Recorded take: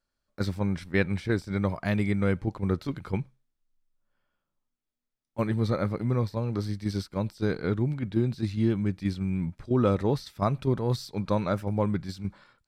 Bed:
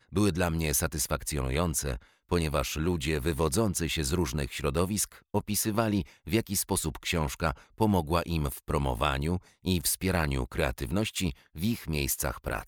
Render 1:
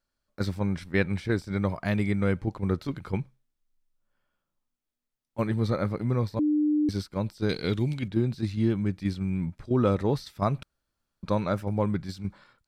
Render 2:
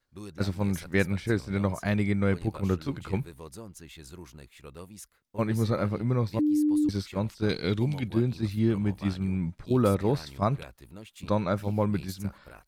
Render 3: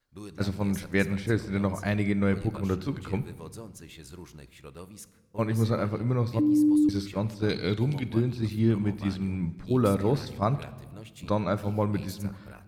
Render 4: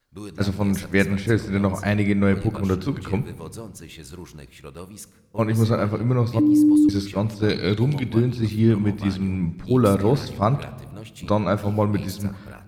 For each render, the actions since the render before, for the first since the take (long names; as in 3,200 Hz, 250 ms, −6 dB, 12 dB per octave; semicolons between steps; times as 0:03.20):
0:06.39–0:06.89: beep over 300 Hz −20.5 dBFS; 0:07.49–0:08.08: high shelf with overshoot 2,100 Hz +10.5 dB, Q 1.5; 0:10.63–0:11.23: fill with room tone
mix in bed −17 dB
rectangular room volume 1,300 cubic metres, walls mixed, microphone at 0.39 metres
level +6 dB